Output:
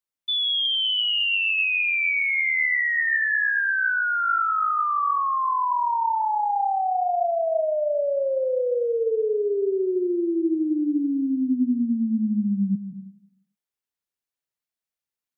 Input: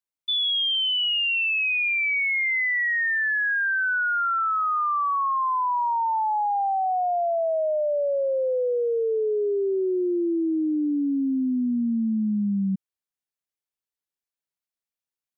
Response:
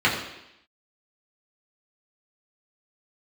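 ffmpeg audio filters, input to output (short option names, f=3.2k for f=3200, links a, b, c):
-filter_complex "[0:a]asplit=2[a][b];[1:a]atrim=start_sample=2205,asetrate=41013,aresample=44100,adelay=149[c];[b][c]afir=irnorm=-1:irlink=0,volume=-25.5dB[d];[a][d]amix=inputs=2:normalize=0"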